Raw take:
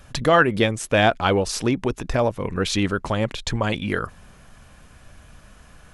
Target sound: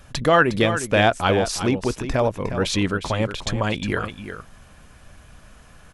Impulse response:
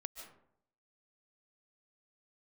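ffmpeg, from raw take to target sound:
-af "aecho=1:1:359:0.316"

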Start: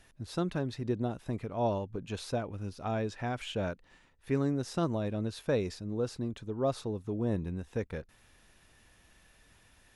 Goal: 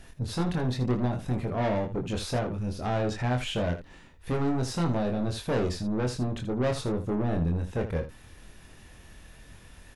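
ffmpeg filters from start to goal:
ffmpeg -i in.wav -af "lowshelf=frequency=400:gain=7.5,asoftclip=type=tanh:threshold=-31.5dB,aecho=1:1:24|79:0.631|0.282,volume=6dB" out.wav

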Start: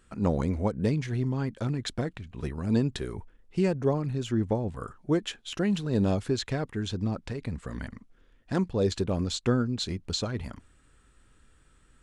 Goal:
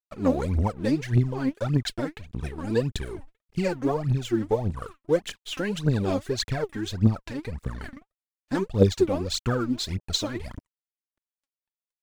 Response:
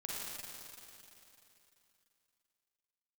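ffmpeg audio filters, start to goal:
-af "aeval=exprs='sgn(val(0))*max(abs(val(0))-0.00335,0)':channel_layout=same,aphaser=in_gain=1:out_gain=1:delay=3.9:decay=0.78:speed=1.7:type=triangular"

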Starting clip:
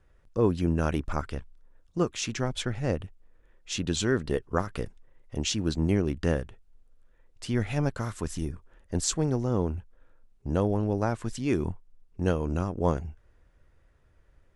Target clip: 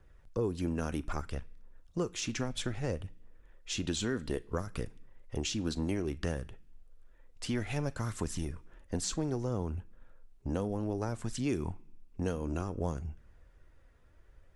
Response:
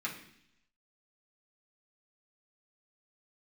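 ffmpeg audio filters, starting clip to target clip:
-filter_complex "[0:a]aphaser=in_gain=1:out_gain=1:delay=4.4:decay=0.29:speed=0.61:type=triangular,acrossover=split=390|5300[link_01][link_02][link_03];[link_01]acompressor=threshold=-33dB:ratio=4[link_04];[link_02]acompressor=threshold=-38dB:ratio=4[link_05];[link_03]acompressor=threshold=-41dB:ratio=4[link_06];[link_04][link_05][link_06]amix=inputs=3:normalize=0,asplit=2[link_07][link_08];[1:a]atrim=start_sample=2205,highshelf=frequency=2300:gain=9.5,adelay=38[link_09];[link_08][link_09]afir=irnorm=-1:irlink=0,volume=-25dB[link_10];[link_07][link_10]amix=inputs=2:normalize=0"

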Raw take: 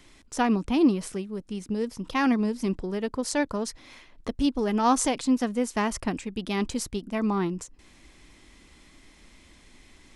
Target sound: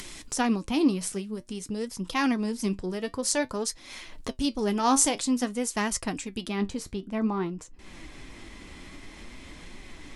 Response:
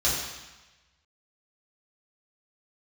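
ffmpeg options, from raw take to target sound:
-af "asetnsamples=nb_out_samples=441:pad=0,asendcmd='6.48 equalizer g -5.5',equalizer=frequency=10000:width_type=o:width=2.4:gain=9.5,acompressor=mode=upward:threshold=-29dB:ratio=2.5,flanger=delay=5:depth=6.4:regen=65:speed=0.51:shape=triangular,volume=2dB"

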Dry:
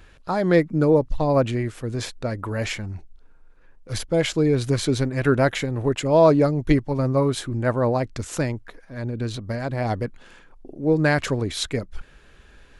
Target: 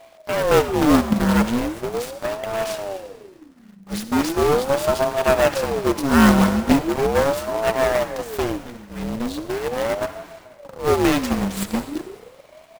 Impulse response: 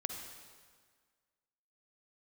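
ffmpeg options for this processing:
-filter_complex "[0:a]asplit=2[link_01][link_02];[link_02]adelay=256.6,volume=-22dB,highshelf=frequency=4000:gain=-5.77[link_03];[link_01][link_03]amix=inputs=2:normalize=0,aeval=exprs='abs(val(0))':channel_layout=same,acrusher=bits=3:mode=log:mix=0:aa=0.000001,asplit=2[link_04][link_05];[1:a]atrim=start_sample=2205[link_06];[link_05][link_06]afir=irnorm=-1:irlink=0,volume=1.5dB[link_07];[link_04][link_07]amix=inputs=2:normalize=0,aeval=exprs='val(0)*sin(2*PI*430*n/s+430*0.55/0.39*sin(2*PI*0.39*n/s))':channel_layout=same,volume=-2.5dB"

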